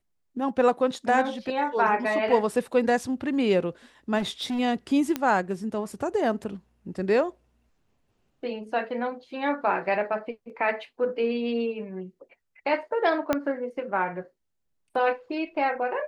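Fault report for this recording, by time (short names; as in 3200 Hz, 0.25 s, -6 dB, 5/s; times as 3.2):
4.18–4.6 clipped -25 dBFS
5.16 pop -12 dBFS
13.33 pop -10 dBFS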